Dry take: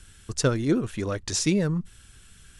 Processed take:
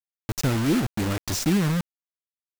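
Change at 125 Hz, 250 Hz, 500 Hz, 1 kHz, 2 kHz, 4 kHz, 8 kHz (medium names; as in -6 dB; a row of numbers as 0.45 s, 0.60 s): +2.5 dB, +2.0 dB, -3.5 dB, +4.5 dB, +2.5 dB, +0.5 dB, -2.0 dB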